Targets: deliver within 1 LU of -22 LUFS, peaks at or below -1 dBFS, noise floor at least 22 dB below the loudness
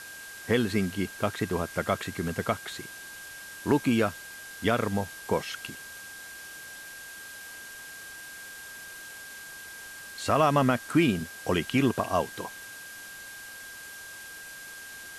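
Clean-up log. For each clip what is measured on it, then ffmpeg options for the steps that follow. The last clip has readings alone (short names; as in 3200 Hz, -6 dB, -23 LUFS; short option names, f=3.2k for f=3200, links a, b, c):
steady tone 1600 Hz; tone level -43 dBFS; noise floor -44 dBFS; noise floor target -51 dBFS; loudness -28.5 LUFS; peak -11.0 dBFS; loudness target -22.0 LUFS
-> -af "bandreject=f=1.6k:w=30"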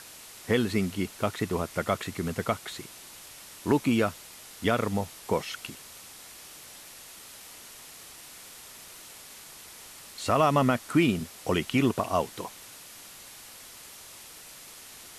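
steady tone none; noise floor -48 dBFS; noise floor target -50 dBFS
-> -af "afftdn=nr=6:nf=-48"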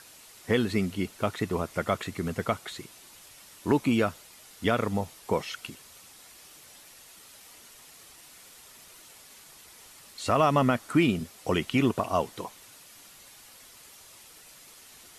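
noise floor -52 dBFS; loudness -28.0 LUFS; peak -11.5 dBFS; loudness target -22.0 LUFS
-> -af "volume=6dB"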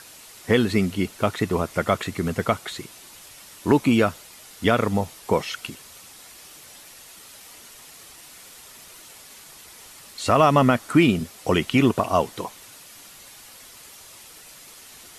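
loudness -22.0 LUFS; peak -5.5 dBFS; noise floor -46 dBFS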